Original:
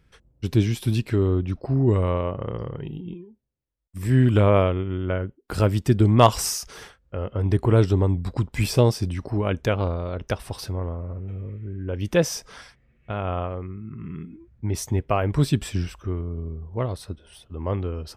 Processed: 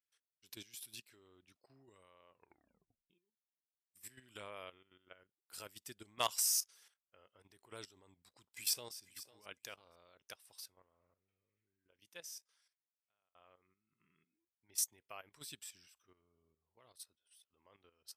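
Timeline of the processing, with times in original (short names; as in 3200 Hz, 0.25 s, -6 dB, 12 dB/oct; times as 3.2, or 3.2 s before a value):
2.29 tape stop 0.81 s
8.06–8.95 echo throw 0.5 s, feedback 15%, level -11.5 dB
9.93–13.35 fade out equal-power
whole clip: differentiator; level quantiser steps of 11 dB; upward expander 1.5:1, over -57 dBFS; gain +1 dB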